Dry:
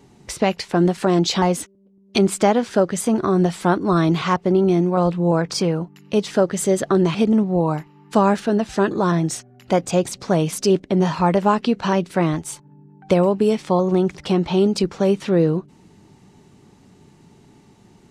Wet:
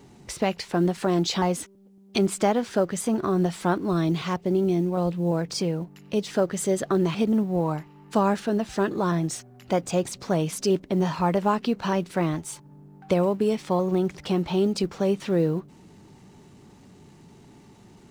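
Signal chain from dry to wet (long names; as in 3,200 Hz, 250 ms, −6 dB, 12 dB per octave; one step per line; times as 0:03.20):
mu-law and A-law mismatch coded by mu
0:03.85–0:06.29: dynamic equaliser 1,200 Hz, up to −6 dB, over −34 dBFS, Q 1
level −6 dB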